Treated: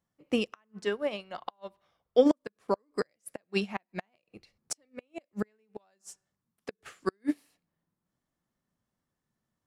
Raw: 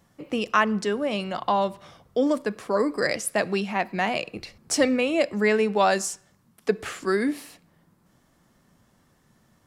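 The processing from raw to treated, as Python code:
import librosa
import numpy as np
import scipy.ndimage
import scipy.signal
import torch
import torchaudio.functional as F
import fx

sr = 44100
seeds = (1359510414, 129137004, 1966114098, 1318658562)

y = fx.graphic_eq(x, sr, hz=(125, 250, 8000), db=(-8, -5, -7), at=(0.84, 2.25), fade=0.02)
y = fx.gate_flip(y, sr, shuts_db=-14.0, range_db=-26)
y = fx.upward_expand(y, sr, threshold_db=-39.0, expansion=2.5)
y = y * 10.0 ** (5.5 / 20.0)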